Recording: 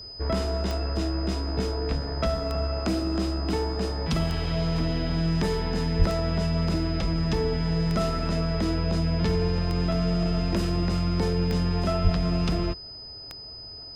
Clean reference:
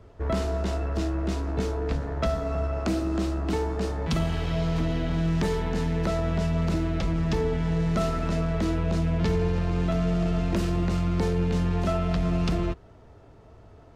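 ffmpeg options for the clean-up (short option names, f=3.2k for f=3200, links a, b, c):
-filter_complex "[0:a]adeclick=t=4,bandreject=f=5k:w=30,asplit=3[a][b][c];[a]afade=t=out:st=5.98:d=0.02[d];[b]highpass=f=140:w=0.5412,highpass=f=140:w=1.3066,afade=t=in:st=5.98:d=0.02,afade=t=out:st=6.1:d=0.02[e];[c]afade=t=in:st=6.1:d=0.02[f];[d][e][f]amix=inputs=3:normalize=0,asplit=3[g][h][i];[g]afade=t=out:st=12.03:d=0.02[j];[h]highpass=f=140:w=0.5412,highpass=f=140:w=1.3066,afade=t=in:st=12.03:d=0.02,afade=t=out:st=12.15:d=0.02[k];[i]afade=t=in:st=12.15:d=0.02[l];[j][k][l]amix=inputs=3:normalize=0"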